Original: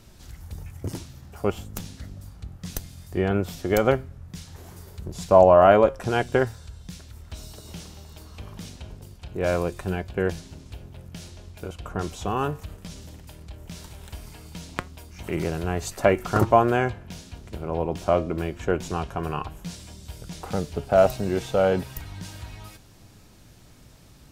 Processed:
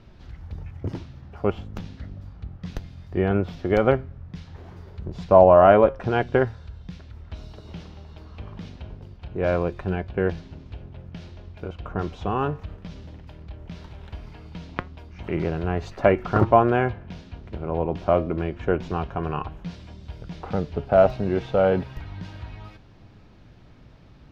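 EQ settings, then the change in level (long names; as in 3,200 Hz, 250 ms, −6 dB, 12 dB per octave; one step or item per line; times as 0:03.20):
high-frequency loss of the air 270 metres
+2.0 dB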